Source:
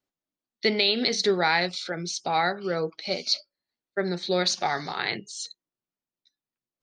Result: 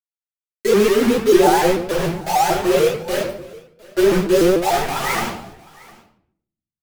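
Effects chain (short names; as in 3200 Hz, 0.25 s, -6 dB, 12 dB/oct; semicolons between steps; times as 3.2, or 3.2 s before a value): spectral contrast raised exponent 2.2; treble ducked by the level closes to 1200 Hz, closed at -21.5 dBFS; spectral repair 4.99–5.25, 620–1800 Hz before; Bessel low-pass 2400 Hz, order 2; resonator 180 Hz, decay 1.3 s, mix 50%; speakerphone echo 0.11 s, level -17 dB; bit-crush 6-bit; on a send: echo 0.708 s -23 dB; on the sum: shoebox room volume 100 m³, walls mixed, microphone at 2.8 m; shaped vibrato saw up 6.8 Hz, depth 160 cents; gain +4.5 dB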